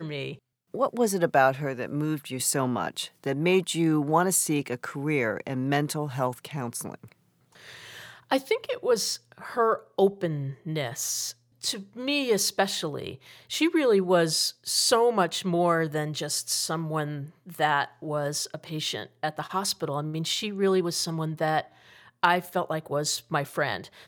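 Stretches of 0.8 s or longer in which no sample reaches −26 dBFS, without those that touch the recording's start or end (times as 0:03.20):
0:06.94–0:08.32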